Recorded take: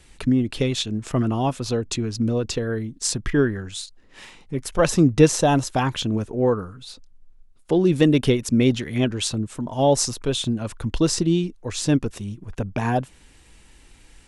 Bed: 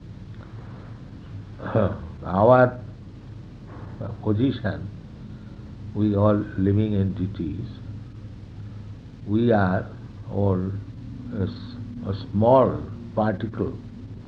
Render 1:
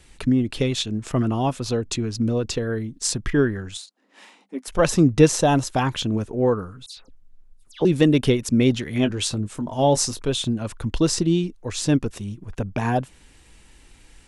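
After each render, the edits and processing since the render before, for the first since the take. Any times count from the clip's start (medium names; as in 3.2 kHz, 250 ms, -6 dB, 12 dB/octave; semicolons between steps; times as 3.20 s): 3.77–4.68 s: rippled Chebyshev high-pass 190 Hz, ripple 6 dB; 6.86–7.85 s: phase dispersion lows, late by 110 ms, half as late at 2.6 kHz; 8.94–10.20 s: doubling 20 ms -11 dB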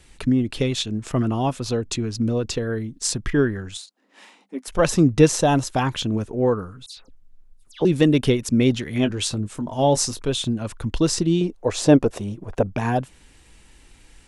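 11.41–12.67 s: peaking EQ 620 Hz +13.5 dB 1.7 oct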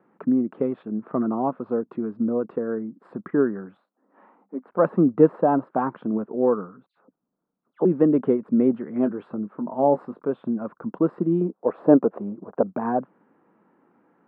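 elliptic band-pass 190–1300 Hz, stop band 60 dB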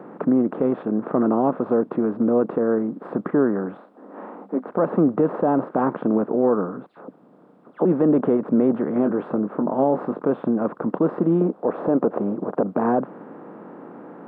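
spectral levelling over time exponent 0.6; peak limiter -9.5 dBFS, peak gain reduction 8.5 dB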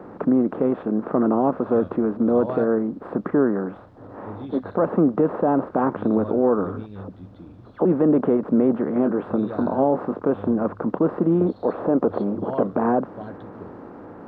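add bed -15 dB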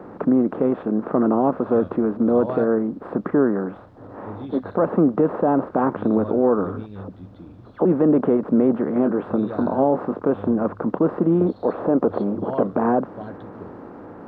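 trim +1 dB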